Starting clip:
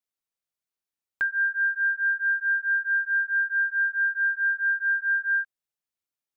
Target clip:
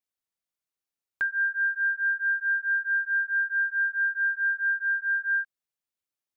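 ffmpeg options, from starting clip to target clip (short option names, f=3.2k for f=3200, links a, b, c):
-filter_complex "[0:a]asplit=3[a][b][c];[a]afade=t=out:st=4.77:d=0.02[d];[b]bandpass=f=1.5k:t=q:w=3.2:csg=0,afade=t=in:st=4.77:d=0.02,afade=t=out:st=5.21:d=0.02[e];[c]afade=t=in:st=5.21:d=0.02[f];[d][e][f]amix=inputs=3:normalize=0,volume=-1.5dB"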